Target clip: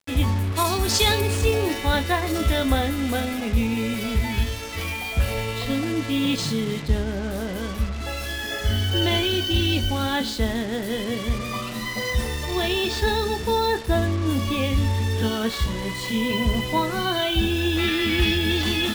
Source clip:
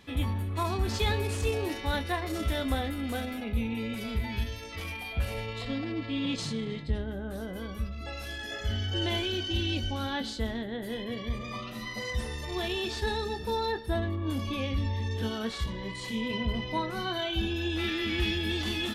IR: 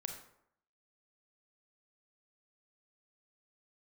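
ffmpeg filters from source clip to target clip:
-filter_complex "[0:a]asettb=1/sr,asplit=3[link_01][link_02][link_03];[link_01]atrim=end=0.524[link_04];[link_02]atrim=start=0.52:end=1.21,asetpts=PTS-STARTPTS,afade=type=in:duration=0.004:curve=qsin,afade=type=out:start_time=0.686:duration=0.004:curve=qsin,bass=frequency=250:gain=-5,treble=frequency=4000:gain=11[link_05];[link_03]atrim=start=1.206[link_06];[link_04][link_05]acrossfade=duration=0.004:curve1=hsin:curve2=qsin[link_07];[link_07][link_06]acrossfade=duration=0.004:curve1=qsin:curve2=hsin,acrusher=bits=6:mix=0:aa=0.5,volume=8.5dB"

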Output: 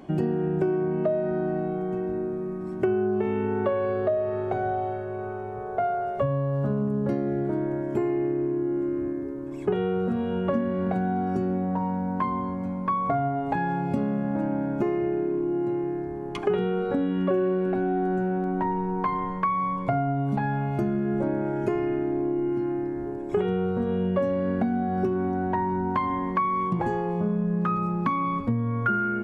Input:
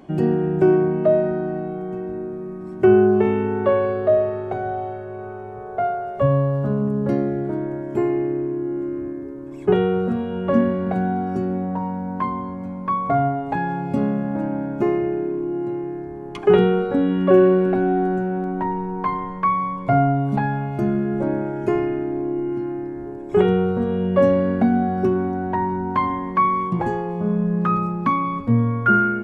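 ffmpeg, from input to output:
ffmpeg -i in.wav -af "acompressor=threshold=-22dB:ratio=6" out.wav

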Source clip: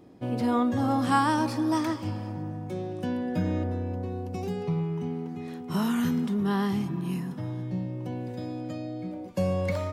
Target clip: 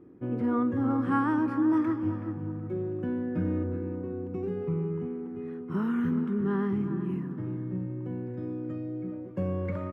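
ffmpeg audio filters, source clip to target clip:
ffmpeg -i in.wav -filter_complex "[0:a]firequalizer=gain_entry='entry(210,0);entry(360,6);entry(660,-10);entry(1300,1);entry(4200,-24)':delay=0.05:min_phase=1,asplit=2[link_01][link_02];[link_02]adelay=375,lowpass=frequency=2800:poles=1,volume=-10dB,asplit=2[link_03][link_04];[link_04]adelay=375,lowpass=frequency=2800:poles=1,volume=0.29,asplit=2[link_05][link_06];[link_06]adelay=375,lowpass=frequency=2800:poles=1,volume=0.29[link_07];[link_01][link_03][link_05][link_07]amix=inputs=4:normalize=0,volume=-2.5dB" out.wav

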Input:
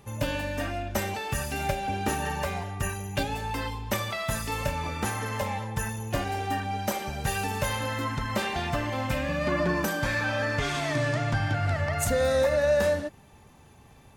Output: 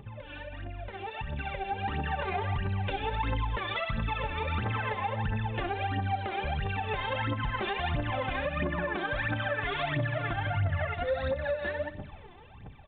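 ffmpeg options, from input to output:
ffmpeg -i in.wav -filter_complex "[0:a]asplit=2[link_01][link_02];[link_02]aecho=0:1:60|120|180:0.178|0.048|0.013[link_03];[link_01][link_03]amix=inputs=2:normalize=0,atempo=1.1,acompressor=threshold=-35dB:ratio=6,aphaser=in_gain=1:out_gain=1:delay=3:decay=0.77:speed=1.5:type=triangular,alimiter=level_in=4.5dB:limit=-24dB:level=0:latency=1:release=144,volume=-4.5dB,dynaudnorm=framelen=250:gausssize=11:maxgain=11dB,asplit=2[link_04][link_05];[link_05]aecho=0:1:217:0.0794[link_06];[link_04][link_06]amix=inputs=2:normalize=0,aresample=8000,aresample=44100,volume=-4dB" out.wav

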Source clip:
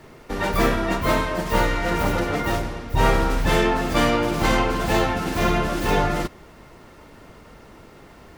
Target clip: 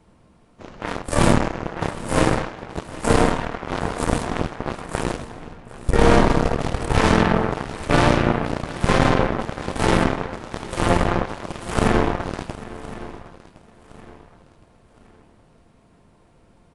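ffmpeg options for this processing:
ffmpeg -i in.wav -filter_complex "[0:a]aeval=exprs='0.531*(cos(1*acos(clip(val(0)/0.531,-1,1)))-cos(1*PI/2))+0.0944*(cos(7*acos(clip(val(0)/0.531,-1,1)))-cos(7*PI/2))':channel_layout=same,asplit=2[link_01][link_02];[link_02]aecho=0:1:381:0.126[link_03];[link_01][link_03]amix=inputs=2:normalize=0,asetrate=22050,aresample=44100,asplit=2[link_04][link_05];[link_05]aecho=0:1:1064|2128|3192:0.133|0.048|0.0173[link_06];[link_04][link_06]amix=inputs=2:normalize=0,volume=3.5dB" out.wav

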